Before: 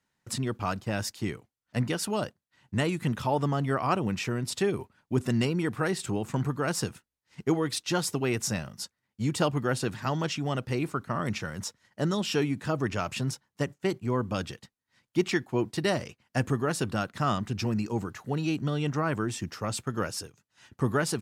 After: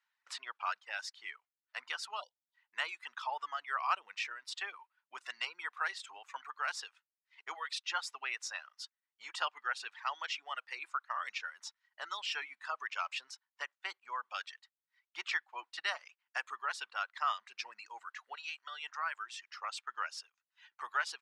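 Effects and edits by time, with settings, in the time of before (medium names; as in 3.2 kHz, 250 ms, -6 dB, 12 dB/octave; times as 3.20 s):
2.21–2.55 s: spectral selection erased 1–2.9 kHz
18.35–19.55 s: high-pass 880 Hz 6 dB/octave
whole clip: low-pass 3.9 kHz 12 dB/octave; reverb removal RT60 1.4 s; high-pass 1 kHz 24 dB/octave; trim -1 dB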